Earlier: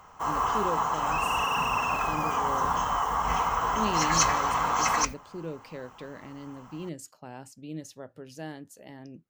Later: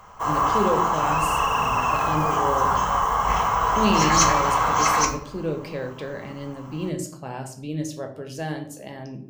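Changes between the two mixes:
speech +4.5 dB; reverb: on, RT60 0.55 s

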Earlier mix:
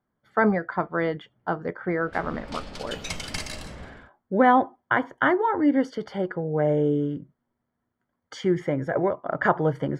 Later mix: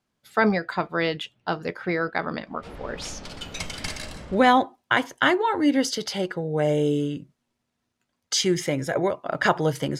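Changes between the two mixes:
speech: remove polynomial smoothing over 41 samples; background: entry +0.50 s

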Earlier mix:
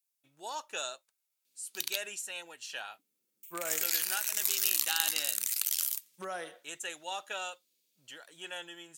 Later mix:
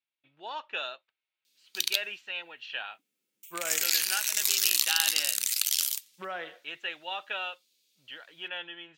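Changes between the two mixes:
speech: add LPF 3000 Hz 24 dB/oct; master: add bell 3700 Hz +9.5 dB 2.1 oct

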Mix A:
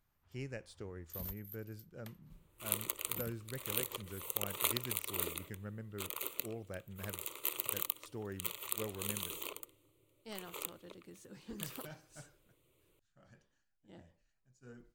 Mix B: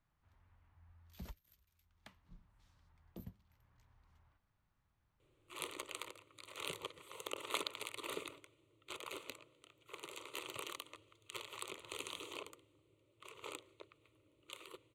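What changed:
speech: muted; second sound: entry +2.90 s; master: add air absorption 80 m

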